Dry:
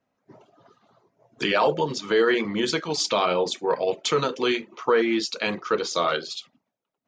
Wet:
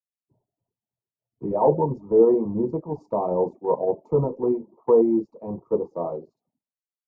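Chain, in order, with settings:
elliptic low-pass filter 950 Hz, stop band 40 dB
low-shelf EQ 160 Hz +11 dB
multiband upward and downward expander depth 100%

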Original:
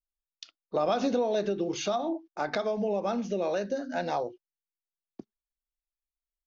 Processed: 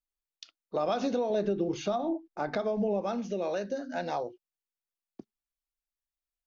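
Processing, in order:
0:01.30–0:03.01: spectral tilt −2 dB per octave
level −2.5 dB

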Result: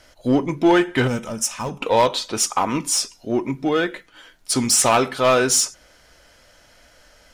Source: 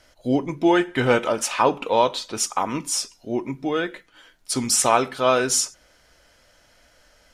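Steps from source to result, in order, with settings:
in parallel at −3 dB: hard clipping −20.5 dBFS, distortion −6 dB
on the sum: gain on a spectral selection 0:01.07–0:01.82, 240–5,000 Hz −13 dB
wave folding −7 dBFS

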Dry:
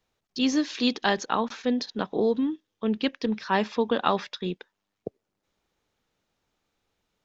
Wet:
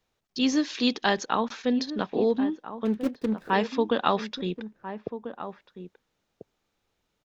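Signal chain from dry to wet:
0:02.85–0:03.50: running median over 41 samples
slap from a distant wall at 230 metres, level −11 dB

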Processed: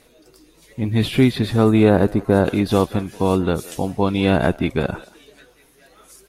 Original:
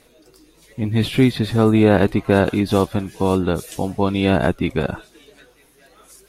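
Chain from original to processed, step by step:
0:01.90–0:02.45: parametric band 2,700 Hz −11.5 dB 1.3 octaves
far-end echo of a speakerphone 180 ms, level −19 dB

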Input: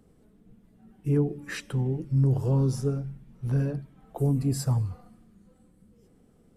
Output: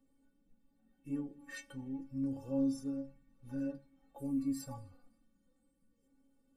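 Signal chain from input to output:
stiff-string resonator 270 Hz, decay 0.25 s, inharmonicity 0.008
level +1 dB

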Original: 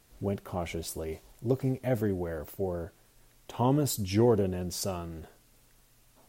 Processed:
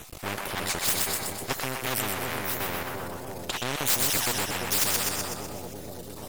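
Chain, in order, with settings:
time-frequency cells dropped at random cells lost 31%
dynamic equaliser 9,400 Hz, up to +5 dB, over −54 dBFS, Q 0.71
half-wave rectification
on a send: echo with a time of its own for lows and highs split 620 Hz, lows 339 ms, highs 125 ms, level −6 dB
on the sum: every bin compressed towards the loudest bin 4 to 1
level +8.5 dB

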